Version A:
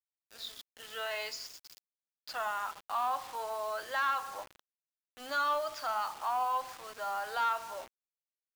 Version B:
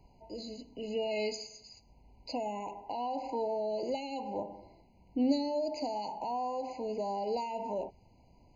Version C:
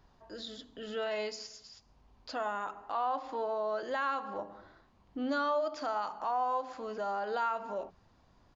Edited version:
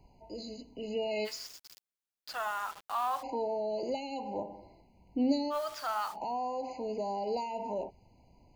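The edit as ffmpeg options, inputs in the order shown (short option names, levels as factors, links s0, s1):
-filter_complex "[0:a]asplit=2[s0][s1];[1:a]asplit=3[s2][s3][s4];[s2]atrim=end=1.28,asetpts=PTS-STARTPTS[s5];[s0]atrim=start=1.24:end=3.24,asetpts=PTS-STARTPTS[s6];[s3]atrim=start=3.2:end=5.56,asetpts=PTS-STARTPTS[s7];[s1]atrim=start=5.5:end=6.17,asetpts=PTS-STARTPTS[s8];[s4]atrim=start=6.11,asetpts=PTS-STARTPTS[s9];[s5][s6]acrossfade=d=0.04:c1=tri:c2=tri[s10];[s10][s7]acrossfade=d=0.04:c1=tri:c2=tri[s11];[s11][s8]acrossfade=d=0.06:c1=tri:c2=tri[s12];[s12][s9]acrossfade=d=0.06:c1=tri:c2=tri"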